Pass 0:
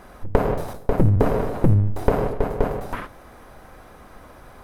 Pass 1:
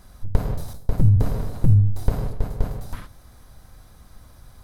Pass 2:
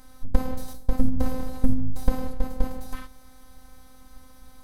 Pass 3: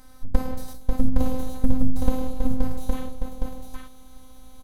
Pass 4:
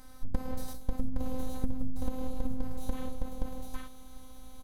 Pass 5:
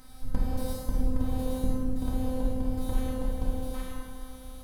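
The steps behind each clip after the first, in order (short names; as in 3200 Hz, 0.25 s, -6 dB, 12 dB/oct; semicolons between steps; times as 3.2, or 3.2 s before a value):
EQ curve 110 Hz 0 dB, 390 Hz -16 dB, 2700 Hz -12 dB, 4000 Hz -1 dB; gain +2.5 dB
robotiser 258 Hz; gain +2 dB
echo 0.814 s -3.5 dB
compressor 6:1, threshold -21 dBFS, peak gain reduction 12.5 dB; gain -2 dB
plate-style reverb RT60 2.1 s, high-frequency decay 0.65×, DRR -4.5 dB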